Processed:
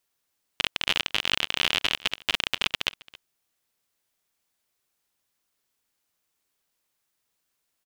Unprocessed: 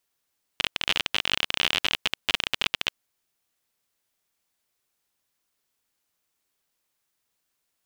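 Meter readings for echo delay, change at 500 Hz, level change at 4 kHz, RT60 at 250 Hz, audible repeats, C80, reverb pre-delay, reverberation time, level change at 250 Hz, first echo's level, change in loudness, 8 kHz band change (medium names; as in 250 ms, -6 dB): 270 ms, 0.0 dB, 0.0 dB, no reverb, 1, no reverb, no reverb, no reverb, 0.0 dB, -22.0 dB, 0.0 dB, 0.0 dB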